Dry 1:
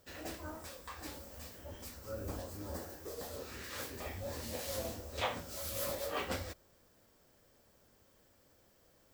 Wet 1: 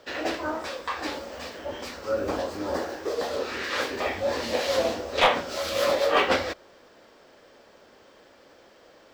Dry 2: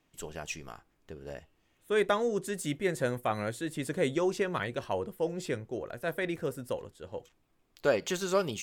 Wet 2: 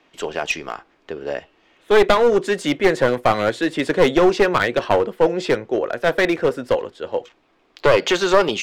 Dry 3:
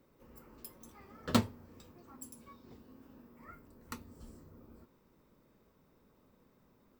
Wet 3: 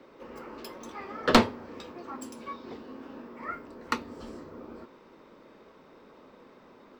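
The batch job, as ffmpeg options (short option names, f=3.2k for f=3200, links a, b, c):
-filter_complex "[0:a]acrossover=split=260 5100:gain=0.141 1 0.0708[a][b][c];[a][b][c]amix=inputs=3:normalize=0,aeval=exprs='clip(val(0),-1,0.0266)':c=same,alimiter=level_in=18.5dB:limit=-1dB:release=50:level=0:latency=1,volume=-1dB"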